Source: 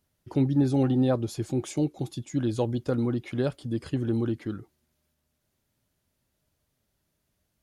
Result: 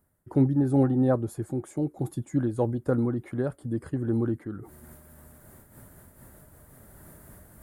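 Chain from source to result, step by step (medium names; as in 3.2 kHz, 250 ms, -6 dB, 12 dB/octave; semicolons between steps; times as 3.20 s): high-order bell 3.9 kHz -16 dB; reverse; upward compressor, threshold -30 dBFS; reverse; random flutter of the level, depth 65%; trim +3.5 dB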